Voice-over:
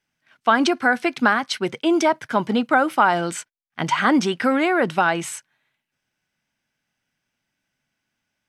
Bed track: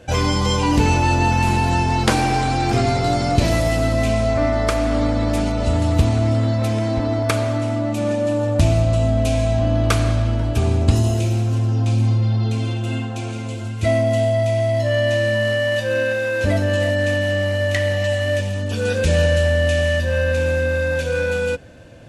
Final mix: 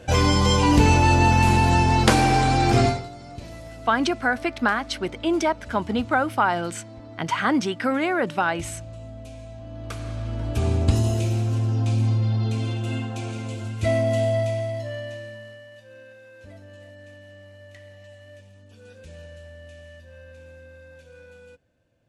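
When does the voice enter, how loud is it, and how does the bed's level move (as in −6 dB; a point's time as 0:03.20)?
3.40 s, −4.0 dB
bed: 0:02.86 0 dB
0:03.10 −21.5 dB
0:09.63 −21.5 dB
0:10.66 −4 dB
0:14.37 −4 dB
0:15.69 −26.5 dB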